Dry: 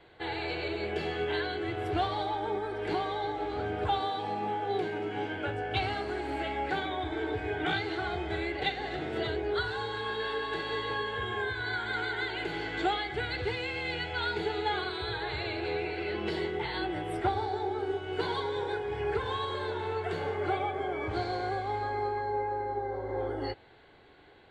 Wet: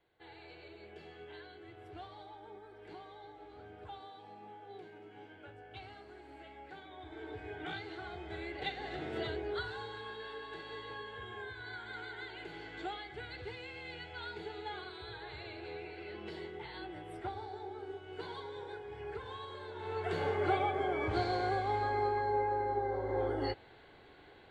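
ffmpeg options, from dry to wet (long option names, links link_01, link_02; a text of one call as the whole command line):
ffmpeg -i in.wav -af "volume=6.5dB,afade=type=in:start_time=6.85:duration=0.54:silence=0.421697,afade=type=in:start_time=8.18:duration=0.96:silence=0.473151,afade=type=out:start_time=9.14:duration=1.07:silence=0.446684,afade=type=in:start_time=19.73:duration=0.5:silence=0.266073" out.wav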